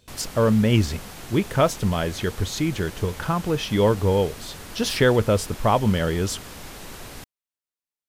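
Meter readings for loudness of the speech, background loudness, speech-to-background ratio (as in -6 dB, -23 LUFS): -22.5 LUFS, -39.0 LUFS, 16.5 dB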